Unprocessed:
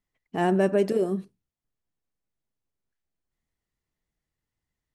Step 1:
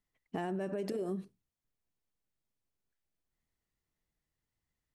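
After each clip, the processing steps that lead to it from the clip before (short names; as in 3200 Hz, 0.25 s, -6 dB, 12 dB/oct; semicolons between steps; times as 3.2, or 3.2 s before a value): limiter -21.5 dBFS, peak gain reduction 10 dB; compressor, threshold -30 dBFS, peak gain reduction 5.5 dB; gain -2.5 dB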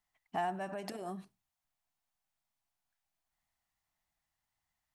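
resonant low shelf 590 Hz -7.5 dB, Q 3; gain +2.5 dB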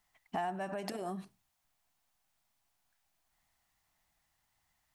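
compressor 2:1, threshold -49 dBFS, peak gain reduction 10.5 dB; gain +8.5 dB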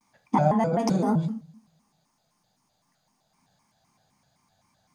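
reverb RT60 0.40 s, pre-delay 3 ms, DRR 2 dB; shaped vibrato square 3.9 Hz, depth 250 cents; gain +3 dB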